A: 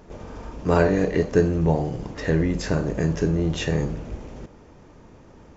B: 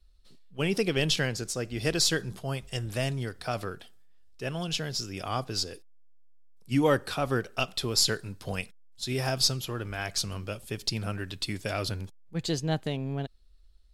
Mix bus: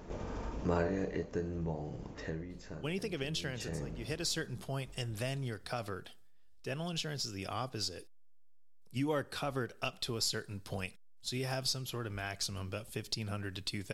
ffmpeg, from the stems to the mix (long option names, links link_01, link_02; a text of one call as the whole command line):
ffmpeg -i stem1.wav -i stem2.wav -filter_complex "[0:a]volume=8.5dB,afade=type=out:start_time=0.65:duration=0.64:silence=0.298538,afade=type=out:start_time=2.2:duration=0.26:silence=0.298538,afade=type=in:start_time=3.42:duration=0.41:silence=0.316228,asplit=2[link_01][link_02];[1:a]adelay=2250,volume=-2dB[link_03];[link_02]apad=whole_len=713801[link_04];[link_03][link_04]sidechaincompress=threshold=-45dB:ratio=8:attack=23:release=390[link_05];[link_01][link_05]amix=inputs=2:normalize=0,acompressor=threshold=-37dB:ratio=2" out.wav